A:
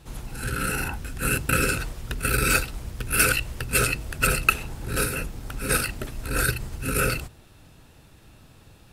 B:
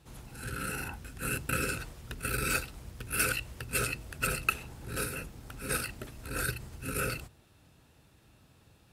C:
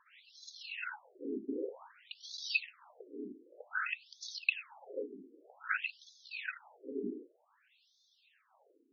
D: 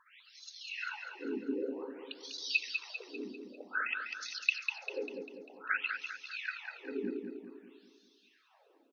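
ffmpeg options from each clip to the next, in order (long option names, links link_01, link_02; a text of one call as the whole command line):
ffmpeg -i in.wav -af "highpass=51,volume=-9dB" out.wav
ffmpeg -i in.wav -af "aphaser=in_gain=1:out_gain=1:delay=1.8:decay=0.45:speed=0.7:type=triangular,afftfilt=real='re*between(b*sr/1024,300*pow(4800/300,0.5+0.5*sin(2*PI*0.53*pts/sr))/1.41,300*pow(4800/300,0.5+0.5*sin(2*PI*0.53*pts/sr))*1.41)':imag='im*between(b*sr/1024,300*pow(4800/300,0.5+0.5*sin(2*PI*0.53*pts/sr))/1.41,300*pow(4800/300,0.5+0.5*sin(2*PI*0.53*pts/sr))*1.41)':win_size=1024:overlap=0.75,volume=1.5dB" out.wav
ffmpeg -i in.wav -af "aecho=1:1:198|396|594|792|990|1188:0.501|0.241|0.115|0.0554|0.0266|0.0128,volume=1.5dB" out.wav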